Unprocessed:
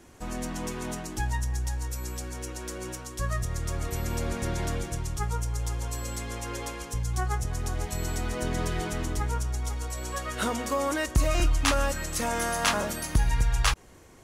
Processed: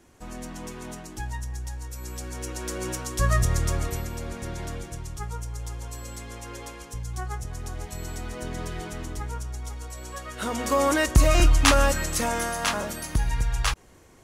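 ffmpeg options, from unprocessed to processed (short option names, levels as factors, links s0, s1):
-af "volume=8.41,afade=t=in:st=1.91:d=1.56:silence=0.237137,afade=t=out:st=3.47:d=0.64:silence=0.237137,afade=t=in:st=10.4:d=0.4:silence=0.316228,afade=t=out:st=11.9:d=0.64:silence=0.446684"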